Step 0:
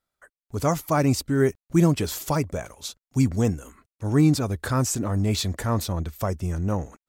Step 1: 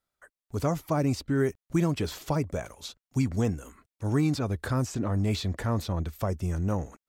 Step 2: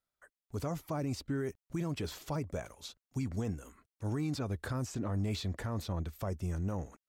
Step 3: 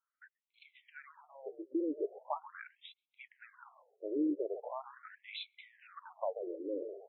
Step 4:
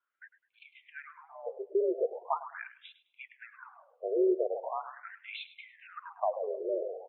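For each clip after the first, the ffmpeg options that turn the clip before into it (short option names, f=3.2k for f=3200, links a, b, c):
-filter_complex "[0:a]acrossover=split=680|4800[a][b][c];[a]acompressor=threshold=-20dB:ratio=4[d];[b]acompressor=threshold=-32dB:ratio=4[e];[c]acompressor=threshold=-47dB:ratio=4[f];[d][e][f]amix=inputs=3:normalize=0,volume=-2dB"
-af "alimiter=limit=-20.5dB:level=0:latency=1:release=29,volume=-6dB"
-filter_complex "[0:a]acrossover=split=1100[a][b];[a]asplit=6[c][d][e][f][g][h];[d]adelay=134,afreqshift=-71,volume=-6dB[i];[e]adelay=268,afreqshift=-142,volume=-14.4dB[j];[f]adelay=402,afreqshift=-213,volume=-22.8dB[k];[g]adelay=536,afreqshift=-284,volume=-31.2dB[l];[h]adelay=670,afreqshift=-355,volume=-39.6dB[m];[c][i][j][k][l][m]amix=inputs=6:normalize=0[n];[b]adynamicsmooth=sensitivity=6:basefreq=2.4k[o];[n][o]amix=inputs=2:normalize=0,afftfilt=real='re*between(b*sr/1024,410*pow(3000/410,0.5+0.5*sin(2*PI*0.41*pts/sr))/1.41,410*pow(3000/410,0.5+0.5*sin(2*PI*0.41*pts/sr))*1.41)':imag='im*between(b*sr/1024,410*pow(3000/410,0.5+0.5*sin(2*PI*0.41*pts/sr))/1.41,410*pow(3000/410,0.5+0.5*sin(2*PI*0.41*pts/sr))*1.41)':win_size=1024:overlap=0.75,volume=6dB"
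-af "aecho=1:1:104|208|312:0.178|0.048|0.013,highpass=f=230:t=q:w=0.5412,highpass=f=230:t=q:w=1.307,lowpass=f=3.2k:t=q:w=0.5176,lowpass=f=3.2k:t=q:w=0.7071,lowpass=f=3.2k:t=q:w=1.932,afreqshift=66,volume=6dB"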